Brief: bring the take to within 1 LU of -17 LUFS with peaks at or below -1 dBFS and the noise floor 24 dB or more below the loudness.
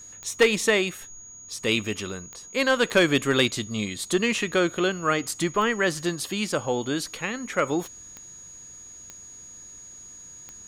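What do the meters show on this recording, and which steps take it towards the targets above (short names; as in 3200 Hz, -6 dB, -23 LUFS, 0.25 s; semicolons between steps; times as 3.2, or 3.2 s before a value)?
clicks 8; steady tone 6700 Hz; tone level -42 dBFS; loudness -24.5 LUFS; peak -10.5 dBFS; loudness target -17.0 LUFS
-> de-click; notch 6700 Hz, Q 30; gain +7.5 dB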